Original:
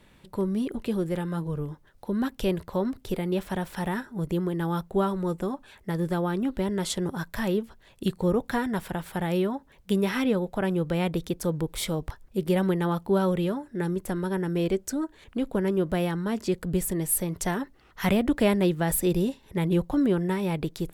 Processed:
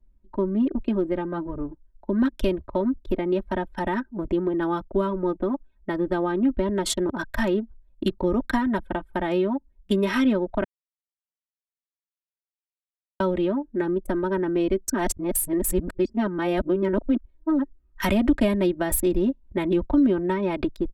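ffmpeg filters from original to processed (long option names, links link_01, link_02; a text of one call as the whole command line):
ffmpeg -i in.wav -filter_complex "[0:a]asplit=5[link_01][link_02][link_03][link_04][link_05];[link_01]atrim=end=10.64,asetpts=PTS-STARTPTS,afade=type=out:start_time=10.636:duration=0.004:curve=hsin[link_06];[link_02]atrim=start=10.64:end=13.2,asetpts=PTS-STARTPTS,volume=0[link_07];[link_03]atrim=start=13.2:end=14.942,asetpts=PTS-STARTPTS,afade=type=in:duration=0.004:curve=hsin[link_08];[link_04]atrim=start=14.938:end=17.592,asetpts=PTS-STARTPTS,areverse[link_09];[link_05]atrim=start=17.588[link_10];[link_06][link_07][link_08]concat=n=3:v=0:a=1[link_11];[link_11][link_09]acrossfade=duration=0.004:curve1=hsin:curve2=hsin[link_12];[link_12][link_10]acrossfade=duration=0.004:curve1=hsin:curve2=hsin,anlmdn=10,aecho=1:1:3.2:0.87,acrossover=split=240[link_13][link_14];[link_14]acompressor=threshold=-26dB:ratio=6[link_15];[link_13][link_15]amix=inputs=2:normalize=0,volume=4dB" out.wav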